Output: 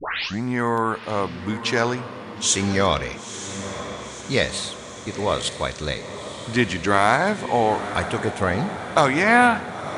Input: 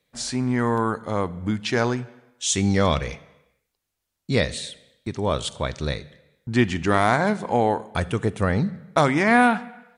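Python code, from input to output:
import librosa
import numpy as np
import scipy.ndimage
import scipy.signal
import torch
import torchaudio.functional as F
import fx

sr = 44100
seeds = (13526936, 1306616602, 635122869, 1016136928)

p1 = fx.tape_start_head(x, sr, length_s=0.44)
p2 = fx.low_shelf(p1, sr, hz=370.0, db=-8.0)
p3 = p2 + fx.echo_diffused(p2, sr, ms=965, feedback_pct=64, wet_db=-11, dry=0)
y = p3 * librosa.db_to_amplitude(3.5)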